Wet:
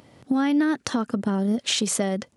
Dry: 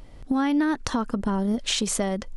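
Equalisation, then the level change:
high-pass filter 110 Hz 24 dB per octave
dynamic equaliser 1,000 Hz, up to −7 dB, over −47 dBFS, Q 3.7
+1.5 dB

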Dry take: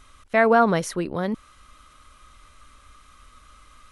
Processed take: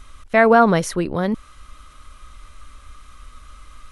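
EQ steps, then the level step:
low-shelf EQ 75 Hz +9.5 dB
+4.0 dB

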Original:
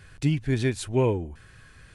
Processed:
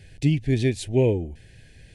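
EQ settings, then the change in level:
Butterworth band-reject 1,200 Hz, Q 0.99
high-shelf EQ 6,700 Hz −5.5 dB
+3.0 dB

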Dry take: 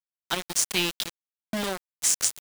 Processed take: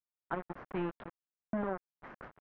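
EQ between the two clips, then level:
low-pass filter 1,500 Hz 24 dB per octave
high-frequency loss of the air 150 metres
−4.0 dB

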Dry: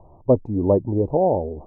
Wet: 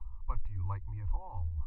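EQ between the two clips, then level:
inverse Chebyshev band-stop filter 130–700 Hz, stop band 50 dB
high-frequency loss of the air 410 metres
+14.0 dB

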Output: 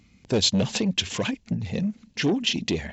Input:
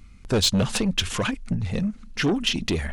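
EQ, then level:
high-pass filter 120 Hz 12 dB per octave
linear-phase brick-wall low-pass 7,700 Hz
parametric band 1,300 Hz −10.5 dB 0.62 octaves
0.0 dB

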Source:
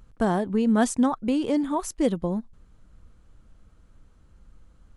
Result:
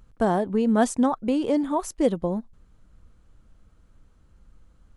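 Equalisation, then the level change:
dynamic equaliser 600 Hz, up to +5 dB, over −38 dBFS, Q 0.87
−1.5 dB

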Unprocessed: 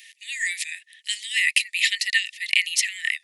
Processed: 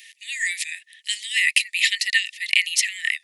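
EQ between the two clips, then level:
notch filter 1,500 Hz, Q 19
+1.5 dB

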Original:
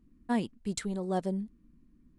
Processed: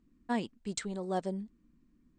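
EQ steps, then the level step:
linear-phase brick-wall low-pass 8,900 Hz
low-shelf EQ 250 Hz −7.5 dB
0.0 dB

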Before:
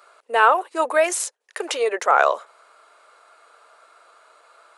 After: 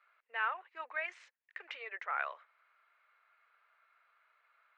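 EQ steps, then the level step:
four-pole ladder band-pass 2,400 Hz, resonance 50%
high-frequency loss of the air 100 metres
spectral tilt −5 dB per octave
+1.0 dB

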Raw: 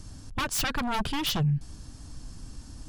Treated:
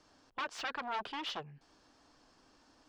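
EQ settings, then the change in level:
three-way crossover with the lows and the highs turned down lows −22 dB, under 340 Hz, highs −24 dB, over 6,100 Hz
low-shelf EQ 150 Hz −9.5 dB
high-shelf EQ 2,900 Hz −8.5 dB
−5.0 dB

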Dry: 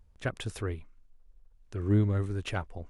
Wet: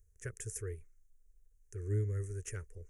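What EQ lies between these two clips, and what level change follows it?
drawn EQ curve 120 Hz 0 dB, 250 Hz −19 dB, 440 Hz +4 dB, 730 Hz −29 dB, 1,800 Hz 0 dB, 3,900 Hz −21 dB, 6,300 Hz +13 dB
−7.0 dB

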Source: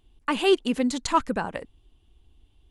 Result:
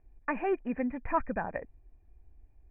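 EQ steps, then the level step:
low-shelf EQ 91 Hz +12 dB
dynamic equaliser 440 Hz, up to −6 dB, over −33 dBFS, Q 1.4
Chebyshev low-pass with heavy ripple 2,500 Hz, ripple 9 dB
0.0 dB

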